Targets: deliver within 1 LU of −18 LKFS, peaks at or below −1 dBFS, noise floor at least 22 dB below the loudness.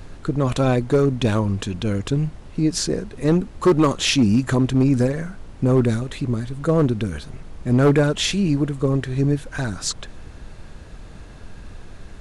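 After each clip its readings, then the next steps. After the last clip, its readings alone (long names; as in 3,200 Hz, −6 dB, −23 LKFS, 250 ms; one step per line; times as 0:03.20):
share of clipped samples 1.6%; peaks flattened at −10.0 dBFS; background noise floor −40 dBFS; target noise floor −43 dBFS; integrated loudness −20.5 LKFS; sample peak −10.0 dBFS; target loudness −18.0 LKFS
→ clipped peaks rebuilt −10 dBFS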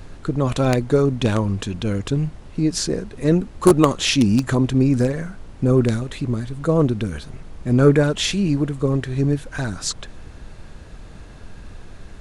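share of clipped samples 0.0%; background noise floor −40 dBFS; target noise floor −42 dBFS
→ noise reduction from a noise print 6 dB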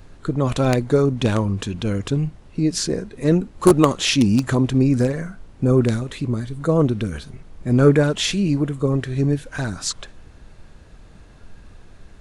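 background noise floor −46 dBFS; integrated loudness −20.0 LKFS; sample peak −1.0 dBFS; target loudness −18.0 LKFS
→ level +2 dB
brickwall limiter −1 dBFS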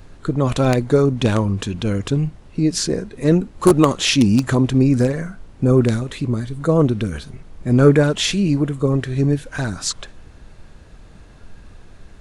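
integrated loudness −18.0 LKFS; sample peak −1.0 dBFS; background noise floor −44 dBFS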